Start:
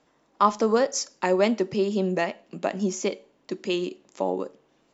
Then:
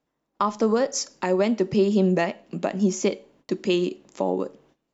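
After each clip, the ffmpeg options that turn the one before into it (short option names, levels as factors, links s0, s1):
-af "agate=range=0.126:threshold=0.001:ratio=16:detection=peak,lowshelf=f=240:g=8,alimiter=limit=0.211:level=0:latency=1:release=364,volume=1.33"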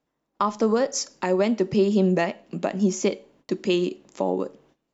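-af anull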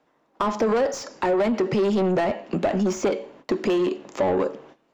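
-filter_complex "[0:a]asoftclip=type=tanh:threshold=0.168,asplit=2[s0][s1];[s1]highpass=f=720:p=1,volume=8.91,asoftclip=type=tanh:threshold=0.158[s2];[s0][s2]amix=inputs=2:normalize=0,lowpass=f=1300:p=1,volume=0.501,acrossover=split=650|1600[s3][s4][s5];[s3]acompressor=threshold=0.0501:ratio=4[s6];[s4]acompressor=threshold=0.0224:ratio=4[s7];[s5]acompressor=threshold=0.00891:ratio=4[s8];[s6][s7][s8]amix=inputs=3:normalize=0,volume=1.88"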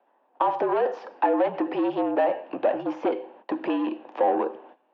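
-af "afreqshift=-57,highpass=f=340:w=0.5412,highpass=f=340:w=1.3066,equalizer=f=430:t=q:w=4:g=-7,equalizer=f=820:t=q:w=4:g=5,equalizer=f=1300:t=q:w=4:g=-7,equalizer=f=2100:t=q:w=4:g=-10,lowpass=f=2600:w=0.5412,lowpass=f=2600:w=1.3066,volume=1.26"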